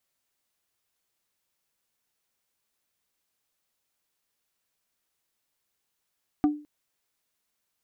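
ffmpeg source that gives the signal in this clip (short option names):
-f lavfi -i "aevalsrc='0.168*pow(10,-3*t/0.36)*sin(2*PI*297*t)+0.0596*pow(10,-3*t/0.12)*sin(2*PI*742.5*t)+0.0211*pow(10,-3*t/0.068)*sin(2*PI*1188*t)+0.0075*pow(10,-3*t/0.052)*sin(2*PI*1485*t)+0.00266*pow(10,-3*t/0.038)*sin(2*PI*1930.5*t)':d=0.21:s=44100"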